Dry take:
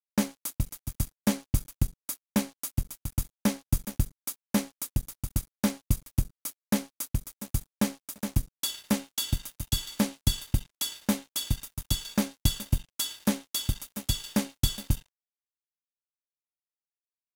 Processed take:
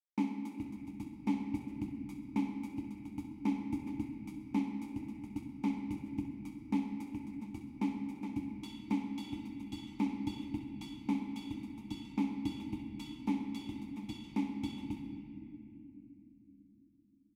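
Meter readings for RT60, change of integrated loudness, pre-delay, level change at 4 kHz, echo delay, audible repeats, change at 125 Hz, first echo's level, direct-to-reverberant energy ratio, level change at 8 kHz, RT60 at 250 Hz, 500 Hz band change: 2.8 s, −8.5 dB, 10 ms, −19.0 dB, 65 ms, 1, −15.0 dB, −12.0 dB, 1.5 dB, below −25 dB, 5.2 s, −12.5 dB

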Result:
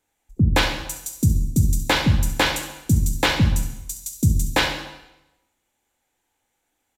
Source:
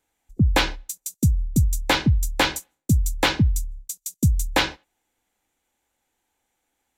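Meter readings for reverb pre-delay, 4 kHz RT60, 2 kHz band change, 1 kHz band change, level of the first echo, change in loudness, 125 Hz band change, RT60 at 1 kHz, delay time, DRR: 7 ms, 0.85 s, +2.0 dB, +1.0 dB, −13.0 dB, +1.5 dB, +1.5 dB, 0.95 s, 68 ms, 4.0 dB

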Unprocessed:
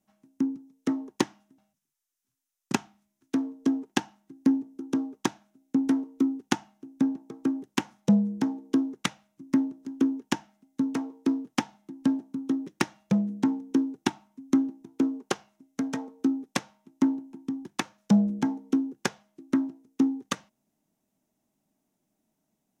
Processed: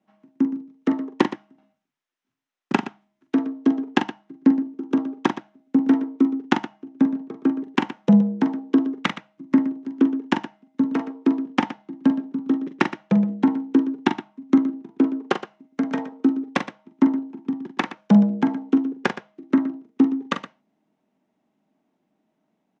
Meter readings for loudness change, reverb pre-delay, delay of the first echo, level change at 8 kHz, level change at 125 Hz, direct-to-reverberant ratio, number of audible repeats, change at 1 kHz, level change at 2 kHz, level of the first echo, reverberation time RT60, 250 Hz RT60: +6.0 dB, no reverb audible, 43 ms, can't be measured, +5.5 dB, no reverb audible, 2, +8.0 dB, +7.0 dB, −8.5 dB, no reverb audible, no reverb audible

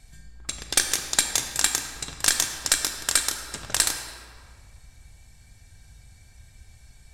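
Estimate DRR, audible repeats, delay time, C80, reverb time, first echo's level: 5.5 dB, no echo audible, no echo audible, 7.5 dB, 2.0 s, no echo audible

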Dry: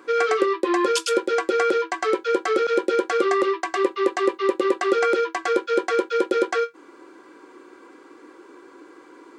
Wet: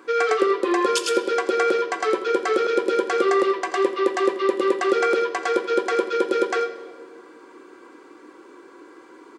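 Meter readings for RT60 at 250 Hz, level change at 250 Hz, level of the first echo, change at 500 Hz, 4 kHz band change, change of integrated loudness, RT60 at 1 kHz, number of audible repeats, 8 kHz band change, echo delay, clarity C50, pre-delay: 1.9 s, +0.5 dB, −16.0 dB, +0.5 dB, +0.5 dB, +0.5 dB, 1.3 s, 1, +0.5 dB, 84 ms, 10.5 dB, 4 ms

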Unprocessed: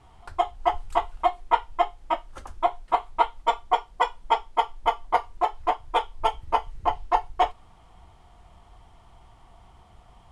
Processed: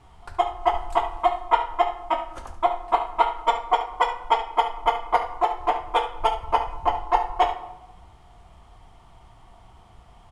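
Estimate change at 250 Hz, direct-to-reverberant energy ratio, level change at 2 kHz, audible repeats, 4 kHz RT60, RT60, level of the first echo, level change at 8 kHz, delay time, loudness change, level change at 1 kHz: +2.0 dB, 6.5 dB, +2.5 dB, 1, 0.55 s, 0.95 s, −12.0 dB, can't be measured, 71 ms, +2.0 dB, +2.0 dB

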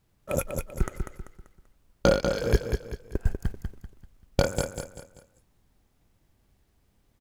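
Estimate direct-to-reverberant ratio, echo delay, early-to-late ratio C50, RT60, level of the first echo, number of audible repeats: no reverb audible, 194 ms, no reverb audible, no reverb audible, −6.0 dB, 4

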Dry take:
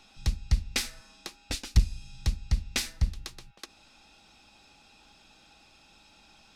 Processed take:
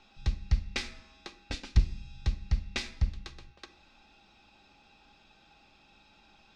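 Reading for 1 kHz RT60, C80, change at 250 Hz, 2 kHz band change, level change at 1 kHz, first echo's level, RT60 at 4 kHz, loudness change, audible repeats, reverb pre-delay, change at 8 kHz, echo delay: 0.65 s, 19.0 dB, −2.0 dB, −2.5 dB, −1.5 dB, no echo audible, 0.80 s, −2.5 dB, no echo audible, 3 ms, −11.5 dB, no echo audible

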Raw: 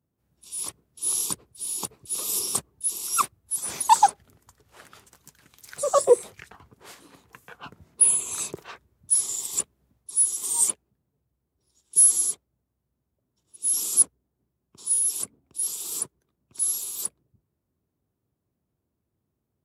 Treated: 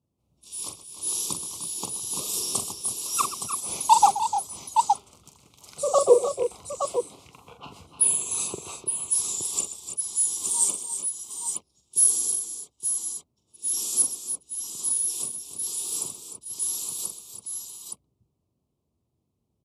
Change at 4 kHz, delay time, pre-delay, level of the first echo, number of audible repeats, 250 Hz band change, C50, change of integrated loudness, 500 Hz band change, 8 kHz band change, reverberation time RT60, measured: +2.0 dB, 43 ms, no reverb audible, −7.0 dB, 5, +2.5 dB, no reverb audible, −2.0 dB, +2.0 dB, −1.0 dB, no reverb audible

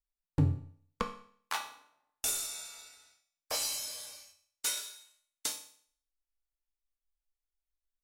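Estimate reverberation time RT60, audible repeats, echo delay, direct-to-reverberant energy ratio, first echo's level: 0.55 s, no echo audible, no echo audible, 2.5 dB, no echo audible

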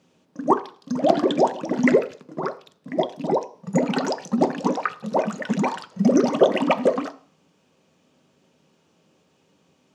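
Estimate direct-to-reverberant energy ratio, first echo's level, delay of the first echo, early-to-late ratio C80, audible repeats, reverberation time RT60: 9.0 dB, no echo audible, no echo audible, 21.0 dB, no echo audible, 0.45 s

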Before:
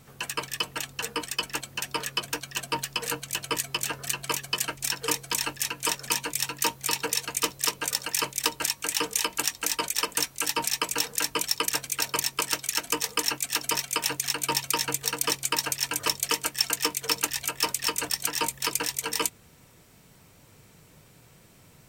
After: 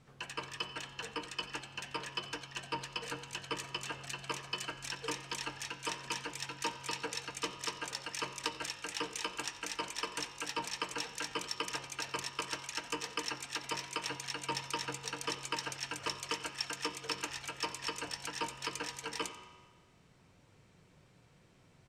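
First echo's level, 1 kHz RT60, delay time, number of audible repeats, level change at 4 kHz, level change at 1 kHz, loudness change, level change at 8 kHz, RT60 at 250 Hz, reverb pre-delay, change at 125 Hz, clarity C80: −17.0 dB, 1.4 s, 89 ms, 1, −10.5 dB, −8.0 dB, −11.5 dB, −15.5 dB, 1.4 s, 5 ms, −7.5 dB, 10.0 dB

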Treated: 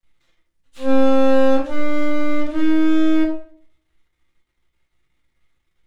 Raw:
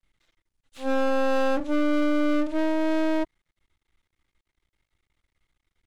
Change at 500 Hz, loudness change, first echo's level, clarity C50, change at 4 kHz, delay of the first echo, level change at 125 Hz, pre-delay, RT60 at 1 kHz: +6.5 dB, +6.5 dB, no echo audible, 7.5 dB, +4.5 dB, no echo audible, can't be measured, 6 ms, 0.50 s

